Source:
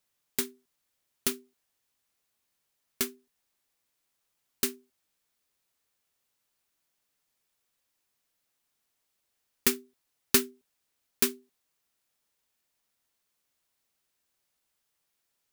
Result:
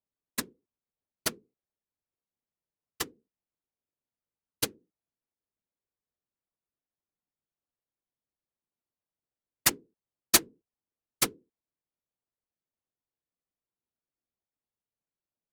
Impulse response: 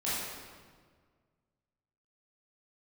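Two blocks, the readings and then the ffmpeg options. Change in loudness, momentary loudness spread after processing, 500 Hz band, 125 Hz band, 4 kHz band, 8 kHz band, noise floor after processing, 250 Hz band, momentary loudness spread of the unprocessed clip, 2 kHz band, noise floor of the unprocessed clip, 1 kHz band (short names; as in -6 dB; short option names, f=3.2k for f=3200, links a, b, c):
0.0 dB, 14 LU, -5.0 dB, +2.5 dB, +2.5 dB, +2.5 dB, under -85 dBFS, -4.5 dB, 13 LU, +2.0 dB, -80 dBFS, +5.5 dB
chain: -af "crystalizer=i=5:c=0,adynamicsmooth=sensitivity=1:basefreq=690,afftfilt=real='hypot(re,im)*cos(2*PI*random(0))':imag='hypot(re,im)*sin(2*PI*random(1))':win_size=512:overlap=0.75"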